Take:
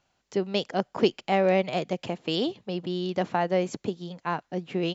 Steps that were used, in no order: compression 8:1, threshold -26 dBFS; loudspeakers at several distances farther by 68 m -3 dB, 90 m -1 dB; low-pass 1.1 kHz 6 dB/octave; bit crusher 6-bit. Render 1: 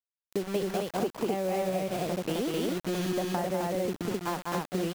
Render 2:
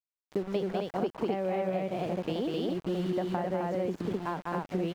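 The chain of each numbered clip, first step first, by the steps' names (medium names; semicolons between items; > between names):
low-pass > bit crusher > loudspeakers at several distances > compression; loudspeakers at several distances > bit crusher > compression > low-pass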